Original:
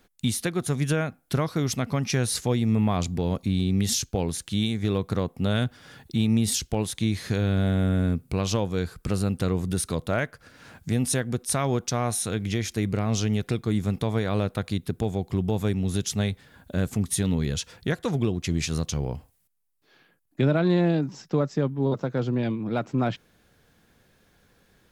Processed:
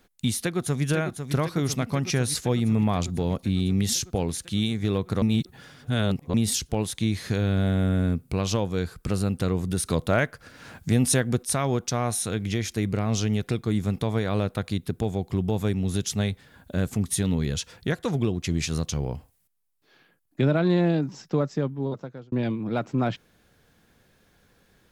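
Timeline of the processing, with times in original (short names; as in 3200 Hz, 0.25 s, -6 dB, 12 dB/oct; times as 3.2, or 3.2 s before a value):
0.39–0.84 echo throw 0.5 s, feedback 75%, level -8 dB
5.22–6.34 reverse
9.86–11.43 gain +3.5 dB
21.19–22.32 fade out equal-power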